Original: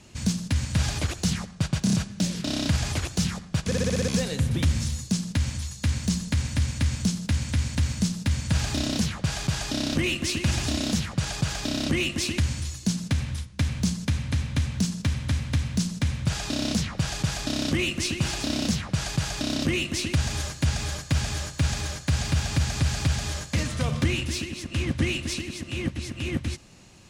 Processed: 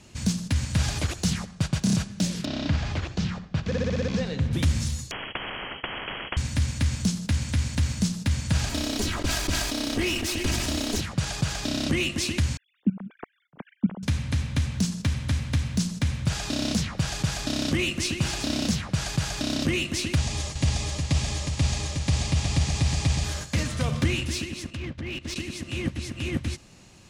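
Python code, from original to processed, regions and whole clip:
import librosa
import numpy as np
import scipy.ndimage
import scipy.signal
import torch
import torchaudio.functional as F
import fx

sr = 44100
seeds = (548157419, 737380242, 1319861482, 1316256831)

y = fx.chain(x, sr, fx.air_absorb(metres=180.0),
    fx.hum_notches(base_hz=60, count=7),
    fx.room_flutter(wall_m=10.9, rt60_s=0.23), at=(2.45, 4.53))
y = fx.chain(y, sr, fx.freq_invert(carrier_hz=3100),
    fx.spectral_comp(ratio=10.0), at=(5.11, 6.37))
y = fx.chain(y, sr, fx.lower_of_two(delay_ms=3.1),
    fx.sustainer(db_per_s=31.0), at=(8.69, 11.01))
y = fx.chain(y, sr, fx.sine_speech(),
    fx.lowpass(hz=1100.0, slope=6),
    fx.level_steps(step_db=18), at=(12.57, 14.03))
y = fx.chain(y, sr, fx.lowpass(hz=10000.0, slope=24),
    fx.peak_eq(hz=1500.0, db=-14.0, octaves=0.24),
    fx.echo_single(ms=363, db=-6.5), at=(20.19, 23.24))
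y = fx.chain(y, sr, fx.env_lowpass_down(base_hz=2900.0, full_db=-20.0),
    fx.level_steps(step_db=16),
    fx.overload_stage(gain_db=27.5), at=(24.7, 25.36))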